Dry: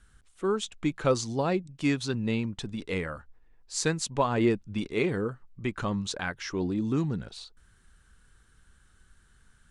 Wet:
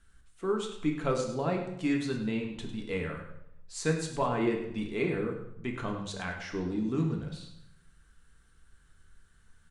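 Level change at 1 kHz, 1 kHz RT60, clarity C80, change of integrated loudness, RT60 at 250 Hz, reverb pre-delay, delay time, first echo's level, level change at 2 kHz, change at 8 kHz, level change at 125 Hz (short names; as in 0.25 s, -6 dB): -3.0 dB, 0.75 s, 8.0 dB, -3.0 dB, 0.90 s, 3 ms, 0.102 s, -11.0 dB, -3.0 dB, -7.5 dB, -3.0 dB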